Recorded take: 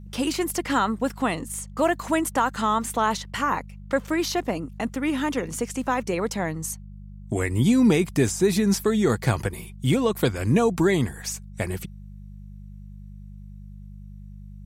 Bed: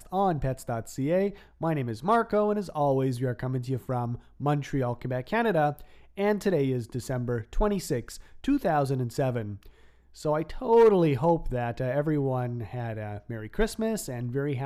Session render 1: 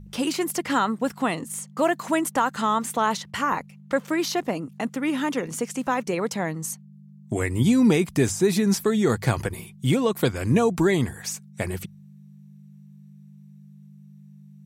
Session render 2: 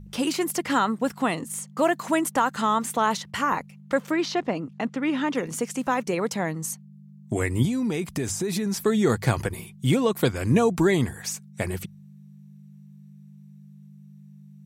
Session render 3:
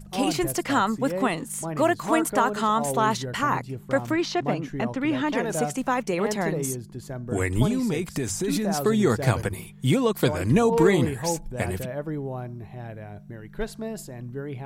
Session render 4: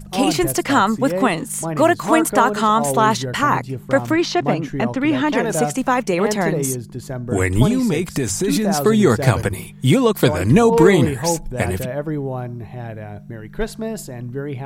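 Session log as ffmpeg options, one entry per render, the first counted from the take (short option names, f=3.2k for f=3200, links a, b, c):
-af "bandreject=f=50:t=h:w=4,bandreject=f=100:t=h:w=4"
-filter_complex "[0:a]asettb=1/sr,asplit=3[a][b][c];[a]atrim=end=4.114[d];[b]atrim=start=4.11:end=5.35,asetpts=PTS-STARTPTS,afade=t=in:d=0.004:c=qsin,afade=t=out:st=1.236:d=0.004:c=qsin,lowpass=4.7k[e];[c]atrim=start=5.346[f];[d][e]acrossfade=d=0.004:c1=hsin:c2=qsin[g];[g][f]acrossfade=d=0.004:c1=qsin:c2=hsin,asettb=1/sr,asplit=3[h][i][j];[h]atrim=end=7.654[k];[i]atrim=start=7.65:end=8.85,asetpts=PTS-STARTPTS,afade=t=in:d=0.004:c=qsin,afade=t=out:st=1.196:d=0.004:c=qsin,acompressor=threshold=-23dB:ratio=6:attack=3.2:release=140:knee=1:detection=peak[l];[j]atrim=start=8.846[m];[k][l]acrossfade=d=0.004:c1=hsin:c2=qsin[n];[n][m]acrossfade=d=0.004:c1=qsin:c2=hsin"
-filter_complex "[1:a]volume=-4.5dB[a];[0:a][a]amix=inputs=2:normalize=0"
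-af "volume=7dB,alimiter=limit=-1dB:level=0:latency=1"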